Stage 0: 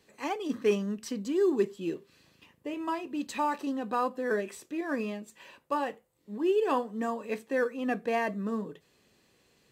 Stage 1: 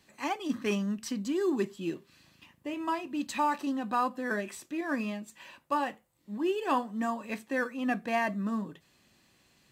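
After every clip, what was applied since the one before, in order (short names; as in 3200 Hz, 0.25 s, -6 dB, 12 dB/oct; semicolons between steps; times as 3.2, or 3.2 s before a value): bell 450 Hz -13 dB 0.4 oct; gain +2 dB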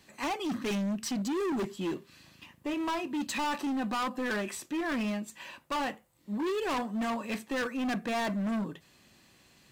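overloaded stage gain 33.5 dB; gain +4.5 dB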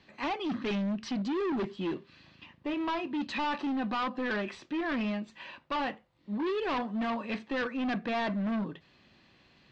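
LPF 4400 Hz 24 dB/oct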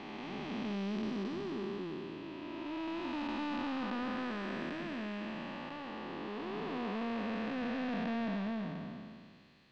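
time blur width 0.841 s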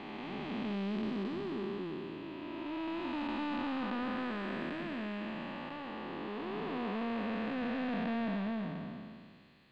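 bell 5700 Hz -11.5 dB 0.4 oct; gain +1 dB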